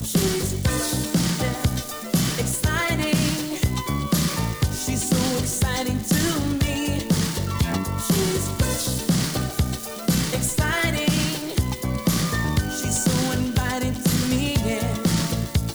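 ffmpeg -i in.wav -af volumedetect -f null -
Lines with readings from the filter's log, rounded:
mean_volume: -22.7 dB
max_volume: -11.7 dB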